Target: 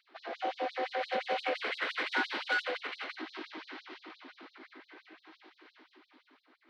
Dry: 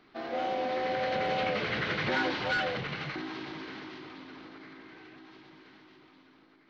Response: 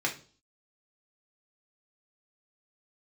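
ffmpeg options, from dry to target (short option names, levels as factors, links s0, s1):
-af "adynamicsmooth=sensitivity=2.5:basefreq=5900,afftfilt=real='re*gte(b*sr/1024,210*pow(3800/210,0.5+0.5*sin(2*PI*5.8*pts/sr)))':imag='im*gte(b*sr/1024,210*pow(3800/210,0.5+0.5*sin(2*PI*5.8*pts/sr)))':win_size=1024:overlap=0.75"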